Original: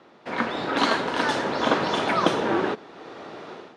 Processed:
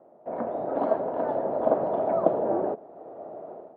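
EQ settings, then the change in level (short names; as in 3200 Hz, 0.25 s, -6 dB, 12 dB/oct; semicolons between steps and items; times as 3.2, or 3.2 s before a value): synth low-pass 650 Hz, resonance Q 5; -7.5 dB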